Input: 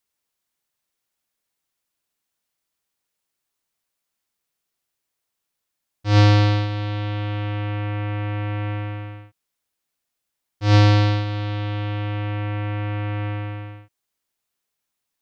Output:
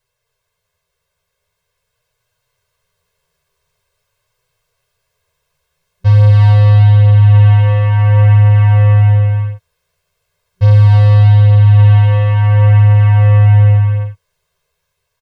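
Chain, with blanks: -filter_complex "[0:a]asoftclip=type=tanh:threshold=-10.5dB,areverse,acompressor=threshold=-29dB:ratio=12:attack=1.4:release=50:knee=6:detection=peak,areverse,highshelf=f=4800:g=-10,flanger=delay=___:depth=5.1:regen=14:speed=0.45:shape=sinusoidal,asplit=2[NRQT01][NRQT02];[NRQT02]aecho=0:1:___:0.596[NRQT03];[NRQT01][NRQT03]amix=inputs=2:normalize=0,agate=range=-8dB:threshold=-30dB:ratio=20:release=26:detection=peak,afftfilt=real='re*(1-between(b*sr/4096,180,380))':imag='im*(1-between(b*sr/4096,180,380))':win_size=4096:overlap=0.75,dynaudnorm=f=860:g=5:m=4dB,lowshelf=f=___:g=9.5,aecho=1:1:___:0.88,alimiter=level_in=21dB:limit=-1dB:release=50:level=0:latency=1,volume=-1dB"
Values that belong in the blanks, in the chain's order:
8, 263, 340, 1.9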